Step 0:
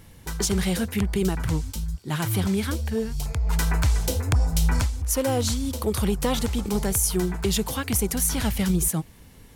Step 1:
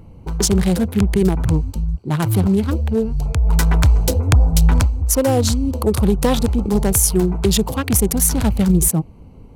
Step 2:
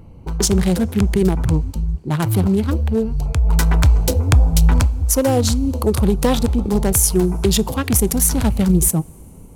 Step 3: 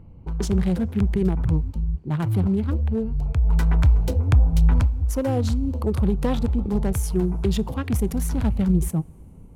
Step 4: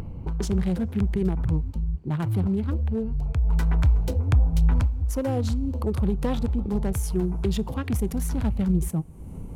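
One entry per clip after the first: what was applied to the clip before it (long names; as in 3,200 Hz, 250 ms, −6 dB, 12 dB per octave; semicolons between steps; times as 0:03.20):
adaptive Wiener filter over 25 samples; level +8.5 dB
coupled-rooms reverb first 0.24 s, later 3.5 s, from −18 dB, DRR 20 dB
bass and treble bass +5 dB, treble −11 dB; level −8.5 dB
upward compression, threshold −20 dBFS; level −3 dB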